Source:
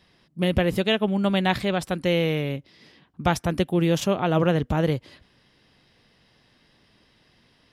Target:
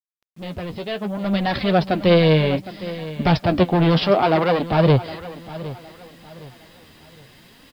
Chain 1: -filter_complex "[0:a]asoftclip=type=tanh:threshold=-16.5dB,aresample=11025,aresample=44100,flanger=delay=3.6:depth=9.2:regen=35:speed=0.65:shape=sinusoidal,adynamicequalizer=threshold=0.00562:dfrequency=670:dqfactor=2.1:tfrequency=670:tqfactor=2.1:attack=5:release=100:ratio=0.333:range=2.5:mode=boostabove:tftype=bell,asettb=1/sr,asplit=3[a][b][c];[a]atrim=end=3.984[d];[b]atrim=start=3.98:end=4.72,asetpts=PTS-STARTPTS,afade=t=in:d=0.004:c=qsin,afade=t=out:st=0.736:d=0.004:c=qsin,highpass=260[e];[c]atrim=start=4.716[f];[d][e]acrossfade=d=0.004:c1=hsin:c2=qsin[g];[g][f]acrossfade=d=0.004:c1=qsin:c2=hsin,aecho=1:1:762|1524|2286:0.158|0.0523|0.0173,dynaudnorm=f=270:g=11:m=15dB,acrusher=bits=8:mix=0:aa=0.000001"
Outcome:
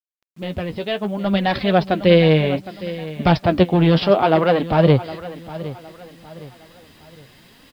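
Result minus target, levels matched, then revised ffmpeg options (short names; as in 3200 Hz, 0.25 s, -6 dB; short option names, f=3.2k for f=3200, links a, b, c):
soft clip: distortion -8 dB
-filter_complex "[0:a]asoftclip=type=tanh:threshold=-24.5dB,aresample=11025,aresample=44100,flanger=delay=3.6:depth=9.2:regen=35:speed=0.65:shape=sinusoidal,adynamicequalizer=threshold=0.00562:dfrequency=670:dqfactor=2.1:tfrequency=670:tqfactor=2.1:attack=5:release=100:ratio=0.333:range=2.5:mode=boostabove:tftype=bell,asettb=1/sr,asplit=3[a][b][c];[a]atrim=end=3.984[d];[b]atrim=start=3.98:end=4.72,asetpts=PTS-STARTPTS,afade=t=in:d=0.004:c=qsin,afade=t=out:st=0.736:d=0.004:c=qsin,highpass=260[e];[c]atrim=start=4.716[f];[d][e]acrossfade=d=0.004:c1=hsin:c2=qsin[g];[g][f]acrossfade=d=0.004:c1=qsin:c2=hsin,aecho=1:1:762|1524|2286:0.158|0.0523|0.0173,dynaudnorm=f=270:g=11:m=15dB,acrusher=bits=8:mix=0:aa=0.000001"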